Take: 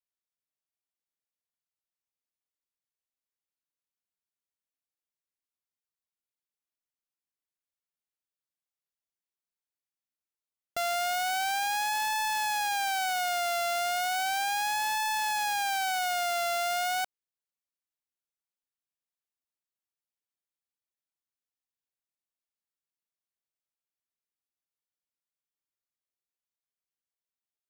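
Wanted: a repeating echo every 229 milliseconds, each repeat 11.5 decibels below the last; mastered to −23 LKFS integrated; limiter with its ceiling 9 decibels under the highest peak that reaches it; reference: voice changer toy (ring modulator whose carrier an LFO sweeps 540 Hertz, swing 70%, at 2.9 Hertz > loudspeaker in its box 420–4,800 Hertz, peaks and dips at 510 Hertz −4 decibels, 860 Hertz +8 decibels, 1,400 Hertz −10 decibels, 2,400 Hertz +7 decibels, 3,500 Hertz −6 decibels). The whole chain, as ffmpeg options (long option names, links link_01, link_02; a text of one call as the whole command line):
ffmpeg -i in.wav -af "alimiter=level_in=9.5dB:limit=-24dB:level=0:latency=1,volume=-9.5dB,aecho=1:1:229|458|687:0.266|0.0718|0.0194,aeval=exprs='val(0)*sin(2*PI*540*n/s+540*0.7/2.9*sin(2*PI*2.9*n/s))':channel_layout=same,highpass=420,equalizer=frequency=510:width_type=q:width=4:gain=-4,equalizer=frequency=860:width_type=q:width=4:gain=8,equalizer=frequency=1400:width_type=q:width=4:gain=-10,equalizer=frequency=2400:width_type=q:width=4:gain=7,equalizer=frequency=3500:width_type=q:width=4:gain=-6,lowpass=frequency=4800:width=0.5412,lowpass=frequency=4800:width=1.3066,volume=18dB" out.wav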